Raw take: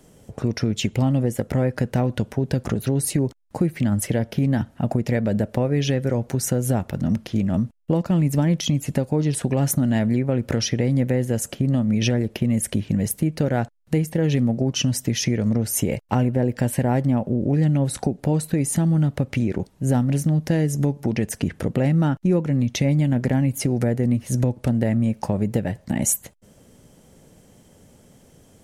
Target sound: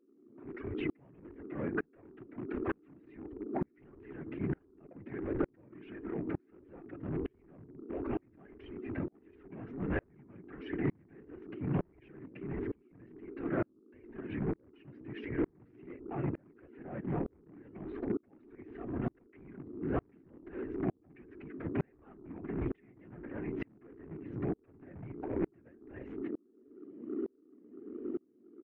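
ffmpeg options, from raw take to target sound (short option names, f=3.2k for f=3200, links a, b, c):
-filter_complex "[0:a]lowshelf=f=190:g=-4.5,bandreject=f=690:w=12,aecho=1:1:4.6:0.89,alimiter=limit=-15dB:level=0:latency=1:release=79,aeval=exprs='val(0)+0.0447*sin(2*PI*470*n/s)':c=same,acrossover=split=170[a][b];[a]adelay=160[c];[c][b]amix=inputs=2:normalize=0,afftfilt=real='hypot(re,im)*cos(2*PI*random(0))':imag='hypot(re,im)*sin(2*PI*random(1))':win_size=512:overlap=0.75,flanger=delay=1.5:depth=1.4:regen=-40:speed=1.5:shape=triangular,aeval=exprs='0.0355*(cos(1*acos(clip(val(0)/0.0355,-1,1)))-cos(1*PI/2))+0.00251*(cos(3*acos(clip(val(0)/0.0355,-1,1)))-cos(3*PI/2))':c=same,highpass=f=230:t=q:w=0.5412,highpass=f=230:t=q:w=1.307,lowpass=f=2.5k:t=q:w=0.5176,lowpass=f=2.5k:t=q:w=0.7071,lowpass=f=2.5k:t=q:w=1.932,afreqshift=-140,aeval=exprs='val(0)*pow(10,-37*if(lt(mod(-1.1*n/s,1),2*abs(-1.1)/1000),1-mod(-1.1*n/s,1)/(2*abs(-1.1)/1000),(mod(-1.1*n/s,1)-2*abs(-1.1)/1000)/(1-2*abs(-1.1)/1000))/20)':c=same,volume=6.5dB"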